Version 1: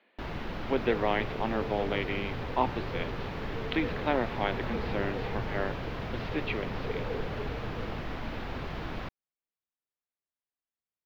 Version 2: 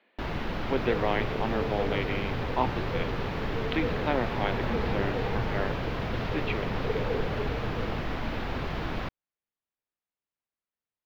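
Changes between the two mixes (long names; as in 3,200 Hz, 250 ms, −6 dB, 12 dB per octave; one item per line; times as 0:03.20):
first sound +4.5 dB
second sound +5.0 dB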